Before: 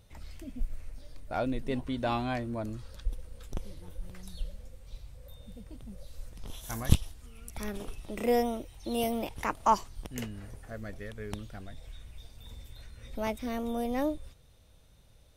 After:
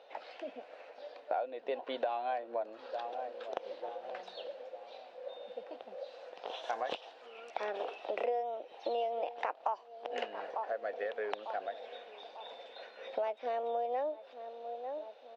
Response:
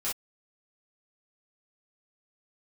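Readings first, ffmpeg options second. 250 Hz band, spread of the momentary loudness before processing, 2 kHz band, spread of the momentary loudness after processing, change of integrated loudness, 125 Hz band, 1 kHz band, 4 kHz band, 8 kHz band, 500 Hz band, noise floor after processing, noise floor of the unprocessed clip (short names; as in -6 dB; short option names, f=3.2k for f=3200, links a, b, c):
-19.0 dB, 21 LU, -2.5 dB, 13 LU, -5.5 dB, under -35 dB, -2.0 dB, -3.5 dB, under -20 dB, 0.0 dB, -56 dBFS, -59 dBFS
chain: -filter_complex "[0:a]highpass=f=480:w=0.5412,highpass=f=480:w=1.3066,equalizer=f=510:t=q:w=4:g=6,equalizer=f=740:t=q:w=4:g=8,equalizer=f=1.2k:t=q:w=4:g=-5,equalizer=f=2.1k:t=q:w=4:g=-7,equalizer=f=3.3k:t=q:w=4:g=-4,lowpass=f=3.4k:w=0.5412,lowpass=f=3.4k:w=1.3066,asplit=2[a][b];[b]adelay=897,lowpass=f=920:p=1,volume=-20dB,asplit=2[c][d];[d]adelay=897,lowpass=f=920:p=1,volume=0.55,asplit=2[e][f];[f]adelay=897,lowpass=f=920:p=1,volume=0.55,asplit=2[g][h];[h]adelay=897,lowpass=f=920:p=1,volume=0.55[i];[a][c][e][g][i]amix=inputs=5:normalize=0,acompressor=threshold=-43dB:ratio=8,volume=10.5dB"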